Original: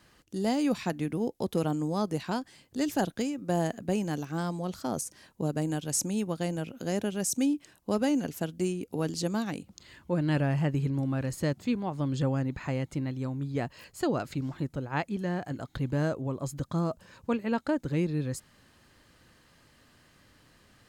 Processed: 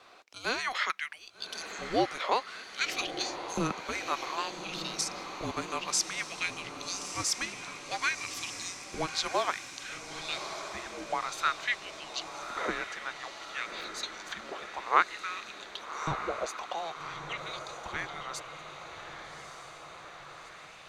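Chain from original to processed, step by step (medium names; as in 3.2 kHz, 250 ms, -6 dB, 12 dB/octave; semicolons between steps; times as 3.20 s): LFO high-pass saw up 0.56 Hz 590–7400 Hz; frequency shift -490 Hz; three-band isolator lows -19 dB, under 370 Hz, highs -16 dB, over 5.8 kHz; echo that smears into a reverb 1209 ms, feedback 62%, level -8.5 dB; trim +7.5 dB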